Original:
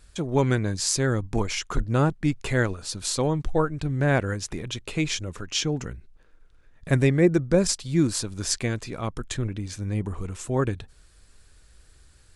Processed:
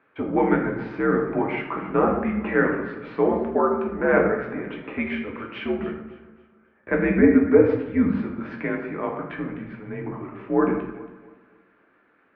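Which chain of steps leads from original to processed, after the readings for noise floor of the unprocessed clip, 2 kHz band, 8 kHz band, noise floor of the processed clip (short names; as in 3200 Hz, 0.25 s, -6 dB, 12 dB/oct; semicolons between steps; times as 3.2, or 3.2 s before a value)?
-55 dBFS, +3.5 dB, under -40 dB, -62 dBFS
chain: echo with dull and thin repeats by turns 0.138 s, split 1300 Hz, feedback 57%, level -11 dB; shoebox room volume 180 m³, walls mixed, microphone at 0.96 m; mistuned SSB -80 Hz 300–2300 Hz; gain +2.5 dB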